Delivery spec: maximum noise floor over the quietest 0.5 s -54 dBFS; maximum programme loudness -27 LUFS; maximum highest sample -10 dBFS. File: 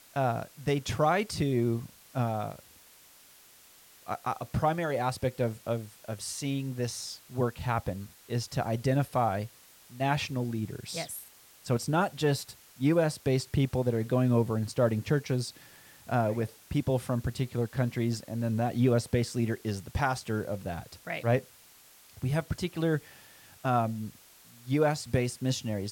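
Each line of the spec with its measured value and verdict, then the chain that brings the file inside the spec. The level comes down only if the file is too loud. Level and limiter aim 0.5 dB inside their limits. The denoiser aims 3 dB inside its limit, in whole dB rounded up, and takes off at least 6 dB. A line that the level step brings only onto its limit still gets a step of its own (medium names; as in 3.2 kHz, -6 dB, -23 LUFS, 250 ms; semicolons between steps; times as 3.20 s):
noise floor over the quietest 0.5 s -57 dBFS: pass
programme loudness -30.5 LUFS: pass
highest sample -14.5 dBFS: pass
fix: none needed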